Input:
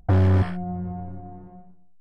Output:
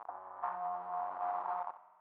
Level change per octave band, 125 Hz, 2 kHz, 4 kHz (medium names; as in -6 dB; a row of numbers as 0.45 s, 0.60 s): under -40 dB, -13.5 dB, no reading